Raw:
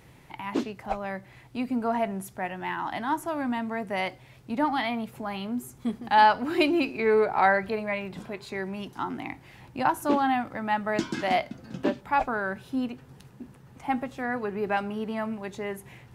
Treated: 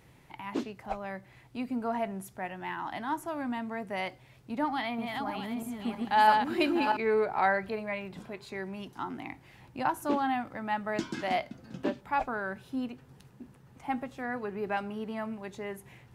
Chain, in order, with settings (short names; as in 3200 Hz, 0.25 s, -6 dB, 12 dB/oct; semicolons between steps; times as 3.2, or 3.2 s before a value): 4.66–6.97 regenerating reverse delay 0.323 s, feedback 43%, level -3 dB; gain -5 dB